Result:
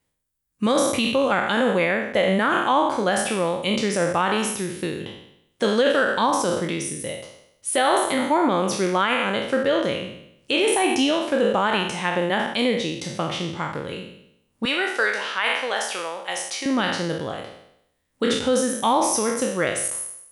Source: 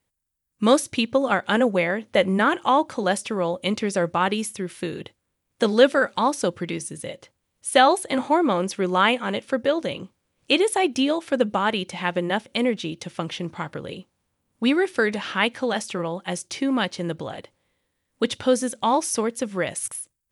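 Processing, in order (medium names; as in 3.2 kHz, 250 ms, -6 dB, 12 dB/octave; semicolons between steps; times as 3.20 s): spectral sustain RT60 0.76 s; 14.65–16.66 s: high-pass 590 Hz 12 dB/octave; peak limiter -10 dBFS, peak gain reduction 9 dB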